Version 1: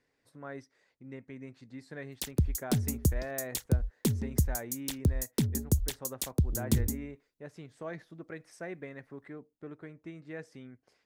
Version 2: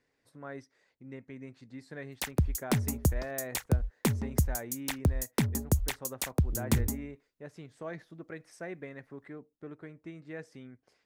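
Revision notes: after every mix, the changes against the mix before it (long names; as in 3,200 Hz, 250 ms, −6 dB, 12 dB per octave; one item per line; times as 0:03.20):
background: add flat-topped bell 1,200 Hz +11 dB 2.4 octaves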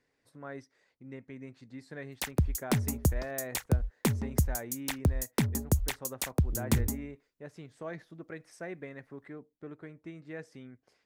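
nothing changed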